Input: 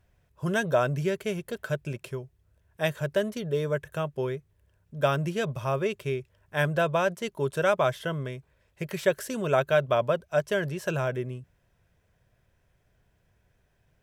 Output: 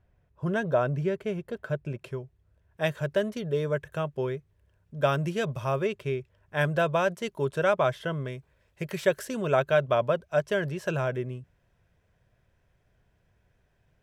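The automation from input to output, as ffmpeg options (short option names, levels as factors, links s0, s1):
-af "asetnsamples=n=441:p=0,asendcmd='2.01 lowpass f 2800;2.82 lowpass f 5000;5.08 lowpass f 9800;5.86 lowpass f 3700;6.61 lowpass f 8200;7.45 lowpass f 4000;8.28 lowpass f 10000;9.25 lowpass f 5100',lowpass=f=1400:p=1"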